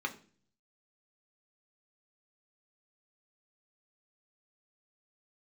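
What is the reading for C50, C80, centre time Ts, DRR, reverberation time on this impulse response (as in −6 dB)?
15.0 dB, 19.0 dB, 8 ms, 3.0 dB, 0.45 s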